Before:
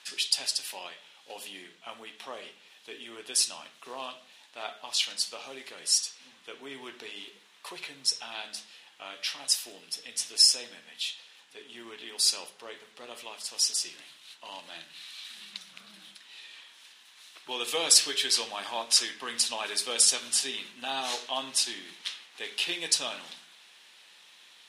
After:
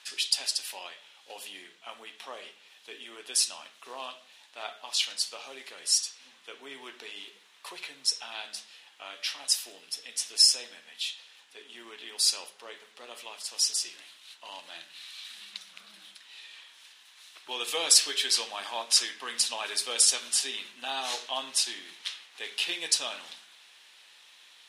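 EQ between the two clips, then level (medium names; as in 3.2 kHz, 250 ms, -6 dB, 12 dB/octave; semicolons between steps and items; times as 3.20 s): high-pass 420 Hz 6 dB/octave; 0.0 dB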